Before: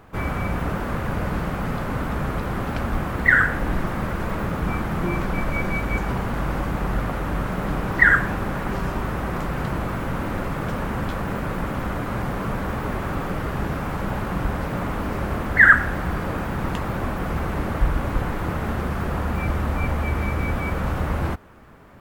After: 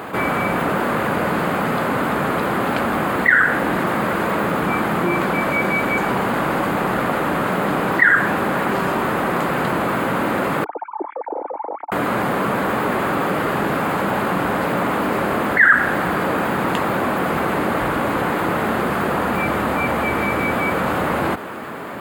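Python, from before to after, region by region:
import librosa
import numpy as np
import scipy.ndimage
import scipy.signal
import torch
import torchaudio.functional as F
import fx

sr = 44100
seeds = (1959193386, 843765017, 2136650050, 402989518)

y = fx.chain(x, sr, fx.sine_speech(),
    fx.formant_cascade(vowel='u'), at=(10.64, 11.92))
y = scipy.signal.sosfilt(scipy.signal.butter(2, 240.0, 'highpass', fs=sr, output='sos'), y)
y = fx.peak_eq(y, sr, hz=5700.0, db=-12.0, octaves=0.26)
y = fx.env_flatten(y, sr, amount_pct=50)
y = F.gain(torch.from_numpy(y), -1.0).numpy()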